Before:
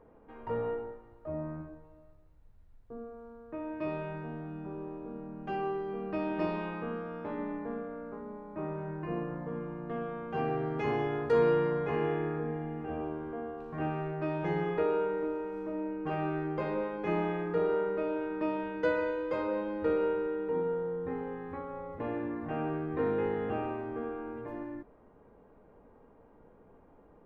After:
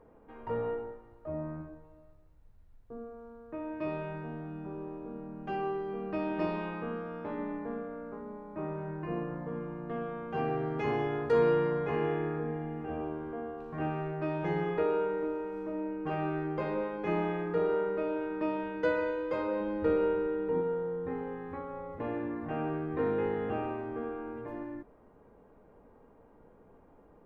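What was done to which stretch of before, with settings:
0:19.60–0:20.61: low-shelf EQ 230 Hz +6 dB

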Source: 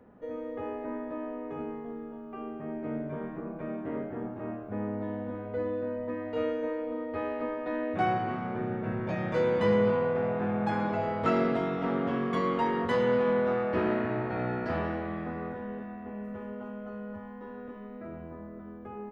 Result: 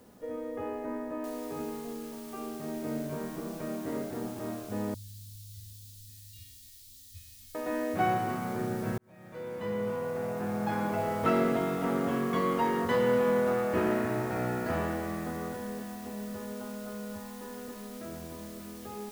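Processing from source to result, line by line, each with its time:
0:01.24: noise floor change −67 dB −52 dB
0:04.94–0:07.55: elliptic band-stop filter 100–3,800 Hz, stop band 70 dB
0:08.98–0:11.14: fade in

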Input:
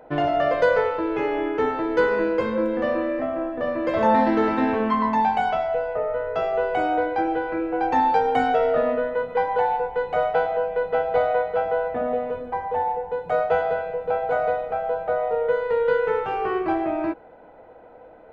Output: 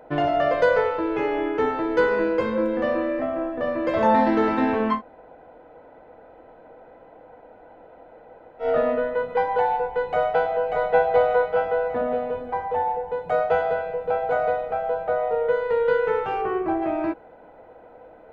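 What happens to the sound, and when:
0:04.97–0:08.64: fill with room tone, crossfade 0.10 s
0:10.07–0:10.86: delay throw 590 ms, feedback 45%, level −3.5 dB
0:16.41–0:16.81: low-pass filter 1,800 Hz → 1,000 Hz 6 dB per octave

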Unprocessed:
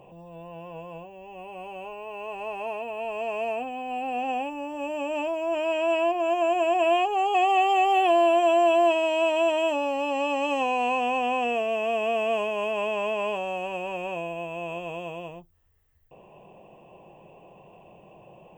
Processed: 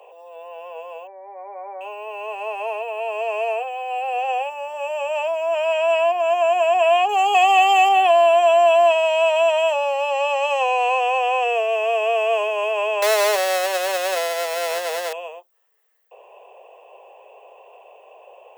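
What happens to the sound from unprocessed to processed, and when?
0:01.07–0:01.81: linear-phase brick-wall low-pass 2,400 Hz
0:07.09–0:07.89: high-shelf EQ 2,800 Hz +8 dB
0:13.02–0:15.13: each half-wave held at its own peak
whole clip: Butterworth high-pass 420 Hz 72 dB per octave; level +6 dB

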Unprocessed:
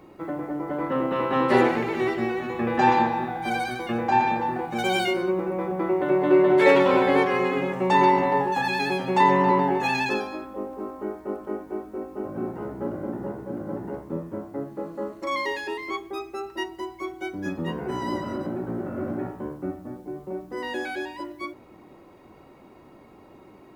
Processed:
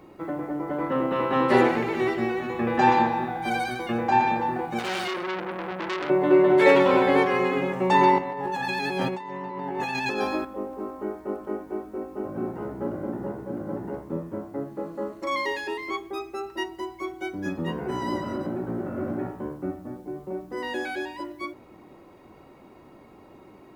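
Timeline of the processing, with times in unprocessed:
0:04.79–0:06.10: saturating transformer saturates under 2,600 Hz
0:08.18–0:10.45: compressor whose output falls as the input rises −30 dBFS

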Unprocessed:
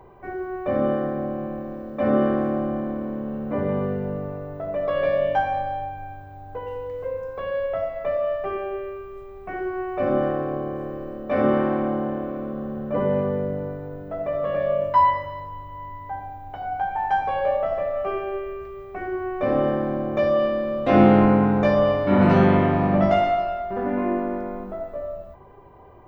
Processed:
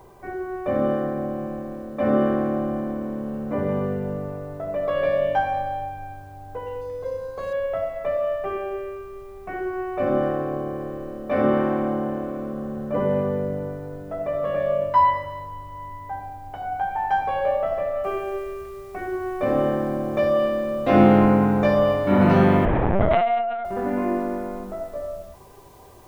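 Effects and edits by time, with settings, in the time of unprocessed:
0:06.81–0:07.53: linearly interpolated sample-rate reduction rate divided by 8×
0:18.04: noise floor change −66 dB −58 dB
0:22.65–0:23.65: linear-prediction vocoder at 8 kHz pitch kept

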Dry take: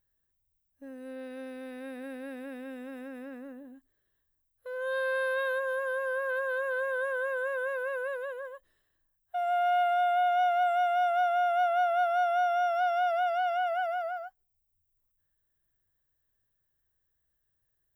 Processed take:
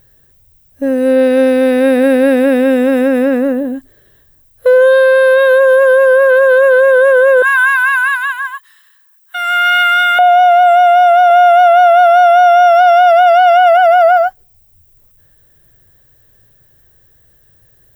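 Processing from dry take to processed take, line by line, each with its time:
0:07.42–0:10.19: Butterworth high-pass 920 Hz 72 dB per octave
0:11.30–0:13.77: high-pass filter 350 Hz 6 dB per octave
whole clip: octave-band graphic EQ 125/500/1,000 Hz +7/+6/−3 dB; boost into a limiter +28.5 dB; level −1 dB

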